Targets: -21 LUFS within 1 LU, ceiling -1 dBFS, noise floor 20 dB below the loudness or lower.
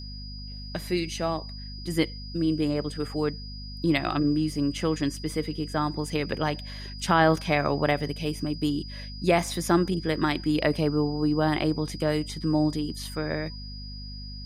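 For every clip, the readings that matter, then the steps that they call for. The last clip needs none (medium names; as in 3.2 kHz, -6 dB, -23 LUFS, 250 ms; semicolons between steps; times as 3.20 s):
hum 50 Hz; highest harmonic 250 Hz; hum level -36 dBFS; steady tone 4.9 kHz; tone level -42 dBFS; loudness -27.0 LUFS; peak level -8.0 dBFS; loudness target -21.0 LUFS
-> de-hum 50 Hz, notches 5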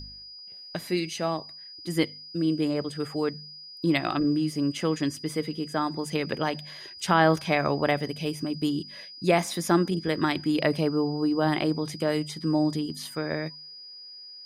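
hum not found; steady tone 4.9 kHz; tone level -42 dBFS
-> band-stop 4.9 kHz, Q 30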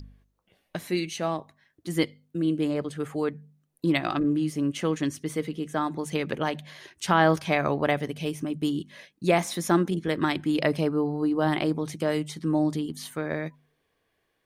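steady tone not found; loudness -27.5 LUFS; peak level -8.5 dBFS; loudness target -21.0 LUFS
-> trim +6.5 dB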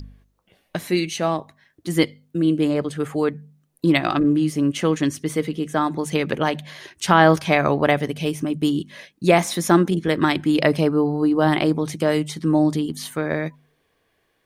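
loudness -21.0 LUFS; peak level -2.0 dBFS; noise floor -68 dBFS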